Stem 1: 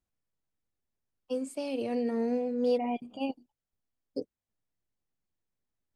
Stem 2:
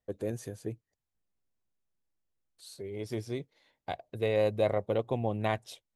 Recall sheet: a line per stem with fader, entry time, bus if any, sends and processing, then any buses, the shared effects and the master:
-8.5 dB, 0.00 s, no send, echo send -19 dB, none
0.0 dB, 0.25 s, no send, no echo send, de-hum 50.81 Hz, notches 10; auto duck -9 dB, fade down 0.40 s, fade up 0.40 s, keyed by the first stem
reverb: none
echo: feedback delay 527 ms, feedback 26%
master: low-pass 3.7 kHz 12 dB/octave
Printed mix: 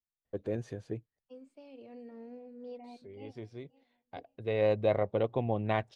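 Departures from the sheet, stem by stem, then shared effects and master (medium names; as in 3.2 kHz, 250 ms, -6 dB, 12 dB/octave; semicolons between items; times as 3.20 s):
stem 1 -8.5 dB -> -18.0 dB; stem 2: missing de-hum 50.81 Hz, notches 10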